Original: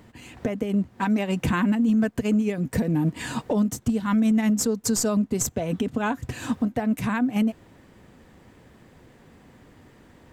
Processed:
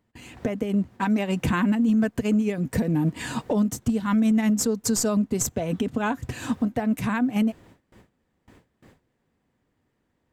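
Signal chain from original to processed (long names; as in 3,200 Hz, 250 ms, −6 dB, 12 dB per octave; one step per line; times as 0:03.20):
noise gate with hold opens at −40 dBFS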